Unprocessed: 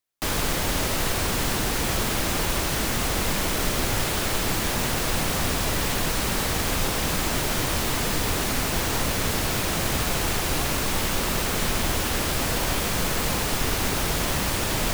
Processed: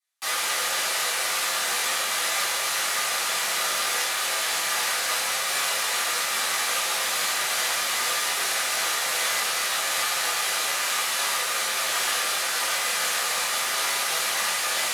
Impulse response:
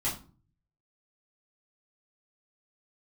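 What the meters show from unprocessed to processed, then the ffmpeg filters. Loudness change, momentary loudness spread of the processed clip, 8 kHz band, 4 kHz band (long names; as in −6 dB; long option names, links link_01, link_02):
+1.0 dB, 1 LU, +3.0 dB, +3.0 dB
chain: -filter_complex "[0:a]highpass=1100,alimiter=limit=-19dB:level=0:latency=1:release=194,flanger=delay=7.1:depth=8.1:regen=-54:speed=0.36:shape=sinusoidal[link_01];[1:a]atrim=start_sample=2205,asetrate=26901,aresample=44100[link_02];[link_01][link_02]afir=irnorm=-1:irlink=0"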